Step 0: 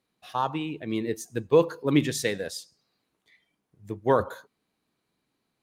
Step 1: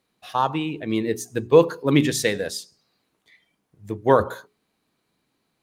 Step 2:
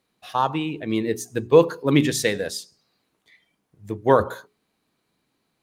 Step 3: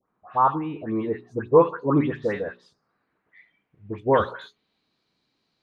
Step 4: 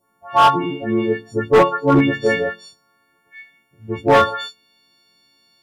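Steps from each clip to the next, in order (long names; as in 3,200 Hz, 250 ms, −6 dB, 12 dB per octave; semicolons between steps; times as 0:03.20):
mains-hum notches 60/120/180/240/300/360/420 Hz; level +5.5 dB
no processing that can be heard
all-pass dispersion highs, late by 117 ms, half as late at 2,100 Hz; low-pass filter sweep 1,200 Hz → 4,700 Hz, 0:02.59–0:05.01; level −3 dB
every partial snapped to a pitch grid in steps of 4 semitones; hard clipping −14.5 dBFS, distortion −10 dB; level +7.5 dB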